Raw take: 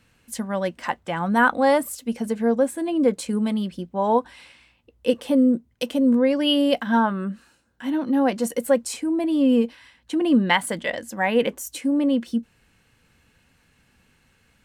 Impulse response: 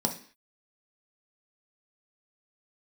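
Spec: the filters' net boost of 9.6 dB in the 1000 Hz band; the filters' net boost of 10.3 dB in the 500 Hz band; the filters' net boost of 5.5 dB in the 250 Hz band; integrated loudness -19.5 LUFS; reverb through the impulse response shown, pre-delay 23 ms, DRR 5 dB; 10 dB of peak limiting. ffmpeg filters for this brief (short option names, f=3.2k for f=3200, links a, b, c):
-filter_complex "[0:a]equalizer=f=250:t=o:g=3.5,equalizer=f=500:t=o:g=8.5,equalizer=f=1k:t=o:g=8.5,alimiter=limit=-7.5dB:level=0:latency=1,asplit=2[a][b];[1:a]atrim=start_sample=2205,adelay=23[c];[b][c]afir=irnorm=-1:irlink=0,volume=-12.5dB[d];[a][d]amix=inputs=2:normalize=0,volume=-5dB"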